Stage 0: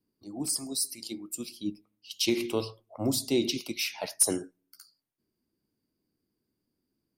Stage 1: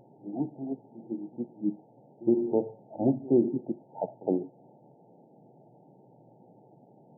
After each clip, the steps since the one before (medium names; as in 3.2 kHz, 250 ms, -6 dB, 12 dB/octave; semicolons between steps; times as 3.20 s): pre-echo 66 ms -22 dB; added noise pink -55 dBFS; FFT band-pass 110–920 Hz; trim +4 dB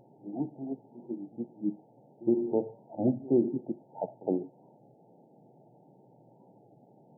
warped record 33 1/3 rpm, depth 100 cents; trim -2 dB